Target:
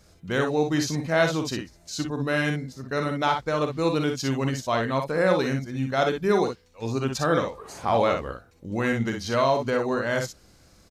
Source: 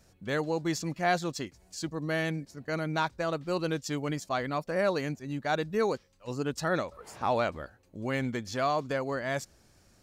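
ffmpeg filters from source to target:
-filter_complex "[0:a]asetrate=40572,aresample=44100,asplit=2[a][b];[b]aecho=0:1:44|60:0.355|0.473[c];[a][c]amix=inputs=2:normalize=0,volume=5dB"

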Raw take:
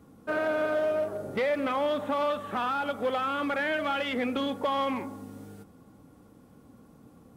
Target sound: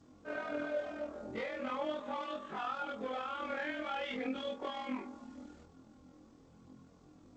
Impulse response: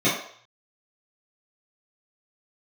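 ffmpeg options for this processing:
-filter_complex "[0:a]afftfilt=real='re':imag='-im':win_size=2048:overlap=0.75,asplit=2[a][b];[b]acompressor=threshold=-43dB:ratio=16,volume=0dB[c];[a][c]amix=inputs=2:normalize=0,flanger=delay=20:depth=7:speed=0.41,tremolo=f=41:d=0.4,volume=-2dB" -ar 16000 -c:a g722

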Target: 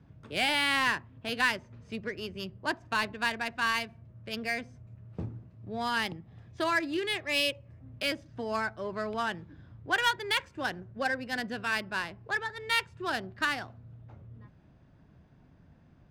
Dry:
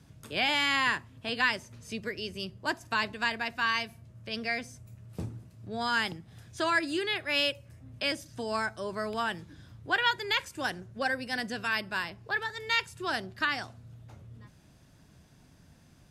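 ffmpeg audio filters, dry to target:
-filter_complex "[0:a]asettb=1/sr,asplit=3[a][b][c];[a]atrim=end=5.574[d];[b]atrim=start=5.57:end=7.73,asetpts=PTS-STARTPTS,afade=t=in:d=0.004:c=qsin,afade=t=out:st=2.156:d=0.004:c=qsin,bandreject=f=1.5k:w=7.4[e];[c]atrim=start=7.726[f];[d][e]acrossfade=d=0.004:c1=hsin:c2=qsin[g];[g][f]acrossfade=d=0.004:c1=qsin:c2=hsin,adynamicsmooth=sensitivity=5:basefreq=2.1k"

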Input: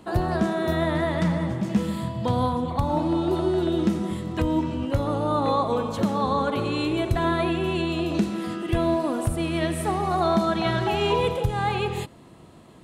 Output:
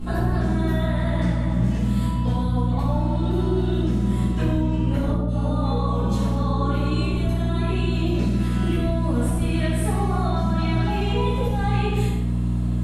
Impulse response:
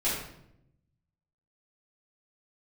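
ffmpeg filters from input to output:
-filter_complex "[0:a]highshelf=f=7.4k:g=5,bandreject=f=111.9:t=h:w=4,bandreject=f=223.8:t=h:w=4,bandreject=f=335.7:t=h:w=4,bandreject=f=447.6:t=h:w=4,bandreject=f=559.5:t=h:w=4,bandreject=f=671.4:t=h:w=4,bandreject=f=783.3:t=h:w=4,bandreject=f=895.2:t=h:w=4,bandreject=f=1.0071k:t=h:w=4,bandreject=f=1.119k:t=h:w=4,bandreject=f=1.2309k:t=h:w=4,bandreject=f=1.3428k:t=h:w=4,bandreject=f=1.4547k:t=h:w=4,bandreject=f=1.5666k:t=h:w=4,bandreject=f=1.6785k:t=h:w=4,bandreject=f=1.7904k:t=h:w=4,bandreject=f=1.9023k:t=h:w=4,bandreject=f=2.0142k:t=h:w=4,bandreject=f=2.1261k:t=h:w=4,bandreject=f=2.238k:t=h:w=4,bandreject=f=2.3499k:t=h:w=4,bandreject=f=2.4618k:t=h:w=4,bandreject=f=2.5737k:t=h:w=4,bandreject=f=2.6856k:t=h:w=4,bandreject=f=2.7975k:t=h:w=4,bandreject=f=2.9094k:t=h:w=4,bandreject=f=3.0213k:t=h:w=4,bandreject=f=3.1332k:t=h:w=4,bandreject=f=3.2451k:t=h:w=4,bandreject=f=3.357k:t=h:w=4,bandreject=f=3.4689k:t=h:w=4,bandreject=f=3.5808k:t=h:w=4,bandreject=f=3.6927k:t=h:w=4,bandreject=f=3.8046k:t=h:w=4,bandreject=f=3.9165k:t=h:w=4,bandreject=f=4.0284k:t=h:w=4,bandreject=f=4.1403k:t=h:w=4,bandreject=f=4.2522k:t=h:w=4,bandreject=f=4.3641k:t=h:w=4,acompressor=threshold=-33dB:ratio=6,aeval=exprs='val(0)+0.0251*(sin(2*PI*60*n/s)+sin(2*PI*2*60*n/s)/2+sin(2*PI*3*60*n/s)/3+sin(2*PI*4*60*n/s)/4+sin(2*PI*5*60*n/s)/5)':c=same,asettb=1/sr,asplit=3[a][b][c];[a]atrim=end=5.104[d];[b]atrim=start=5.1:end=7.69,asetpts=PTS-STARTPTS,afade=t=in:d=0.004:c=qsin,afade=t=out:st=2.586:d=0.004:c=qsin,acrossover=split=510|1800[e][f][g];[g]adelay=180[h];[f]adelay=220[i];[e][i][h]amix=inputs=3:normalize=0,atrim=end_sample=114219[j];[c]atrim=start=7.686[k];[d][j]acrossfade=d=0.004:c1=hsin:c2=qsin[l];[l][k]acrossfade=d=0.004:c1=qsin:c2=hsin[m];[1:a]atrim=start_sample=2205,afade=t=out:st=0.19:d=0.01,atrim=end_sample=8820,asetrate=28665,aresample=44100[n];[m][n]afir=irnorm=-1:irlink=0,volume=-3.5dB"

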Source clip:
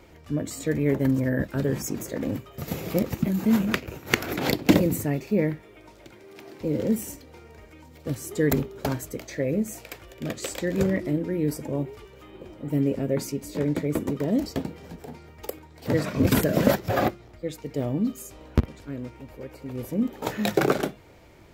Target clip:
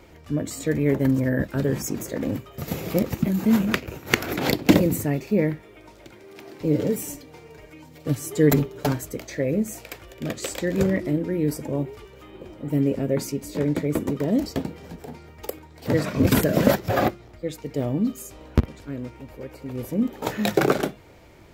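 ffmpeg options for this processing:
-filter_complex "[0:a]asettb=1/sr,asplit=3[a][b][c];[a]atrim=end=6.604[d];[b]atrim=start=6.6:end=8.92,asetpts=PTS-STARTPTS,afade=t=in:d=0.004:c=qsin,afade=t=out:st=2.316:d=0.004:c=qsin,aecho=1:1:6.8:0.61,atrim=end_sample=102312[e];[c]atrim=start=8.916[f];[d][e]acrossfade=d=0.004:c1=hsin:c2=qsin[g];[g][f]acrossfade=d=0.004:c1=qsin:c2=hsin,volume=2dB"

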